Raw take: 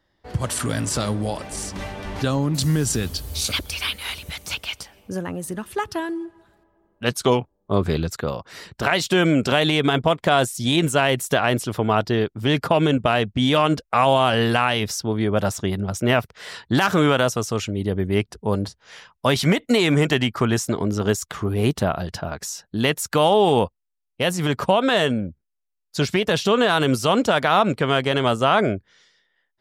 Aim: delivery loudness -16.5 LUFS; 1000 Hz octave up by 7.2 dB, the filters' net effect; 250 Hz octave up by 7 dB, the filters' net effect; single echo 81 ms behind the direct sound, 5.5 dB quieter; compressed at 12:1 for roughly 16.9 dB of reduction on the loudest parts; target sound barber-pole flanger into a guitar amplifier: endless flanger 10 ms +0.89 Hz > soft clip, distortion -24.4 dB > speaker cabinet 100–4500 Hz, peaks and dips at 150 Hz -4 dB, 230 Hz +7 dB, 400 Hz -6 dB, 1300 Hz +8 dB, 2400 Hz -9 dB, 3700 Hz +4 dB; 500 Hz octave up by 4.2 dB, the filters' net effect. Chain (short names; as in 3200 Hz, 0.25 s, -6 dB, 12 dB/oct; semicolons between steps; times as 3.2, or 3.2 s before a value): bell 250 Hz +4 dB; bell 500 Hz +5 dB; bell 1000 Hz +4.5 dB; compressor 12:1, threshold -25 dBFS; echo 81 ms -5.5 dB; endless flanger 10 ms +0.89 Hz; soft clip -19.5 dBFS; speaker cabinet 100–4500 Hz, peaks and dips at 150 Hz -4 dB, 230 Hz +7 dB, 400 Hz -6 dB, 1300 Hz +8 dB, 2400 Hz -9 dB, 3700 Hz +4 dB; gain +16 dB